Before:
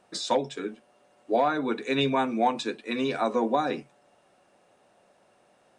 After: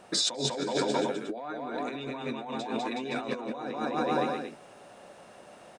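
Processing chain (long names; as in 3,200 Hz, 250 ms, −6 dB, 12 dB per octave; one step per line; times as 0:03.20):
bouncing-ball delay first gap 200 ms, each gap 0.85×, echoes 5
compressor whose output falls as the input rises −35 dBFS, ratio −1
level +2 dB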